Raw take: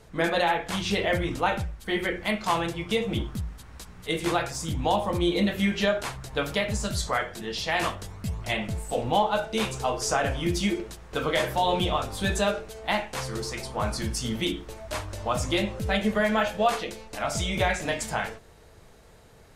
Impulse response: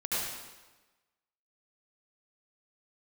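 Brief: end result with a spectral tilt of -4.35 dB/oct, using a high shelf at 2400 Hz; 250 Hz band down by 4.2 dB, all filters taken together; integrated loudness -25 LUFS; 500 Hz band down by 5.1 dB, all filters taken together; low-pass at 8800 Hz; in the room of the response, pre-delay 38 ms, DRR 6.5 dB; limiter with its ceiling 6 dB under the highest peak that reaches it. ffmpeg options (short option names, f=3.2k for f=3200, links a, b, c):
-filter_complex "[0:a]lowpass=8.8k,equalizer=f=250:t=o:g=-4.5,equalizer=f=500:t=o:g=-5.5,highshelf=f=2.4k:g=-3,alimiter=limit=-20dB:level=0:latency=1,asplit=2[a][b];[1:a]atrim=start_sample=2205,adelay=38[c];[b][c]afir=irnorm=-1:irlink=0,volume=-13.5dB[d];[a][d]amix=inputs=2:normalize=0,volume=6dB"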